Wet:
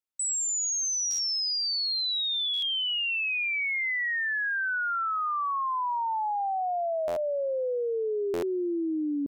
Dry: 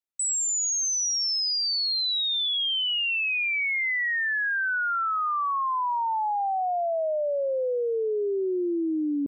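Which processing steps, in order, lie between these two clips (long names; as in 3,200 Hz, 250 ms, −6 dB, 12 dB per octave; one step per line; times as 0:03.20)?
buffer that repeats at 0:01.10/0:02.53/0:07.07/0:08.33, samples 512, times 7
level −2.5 dB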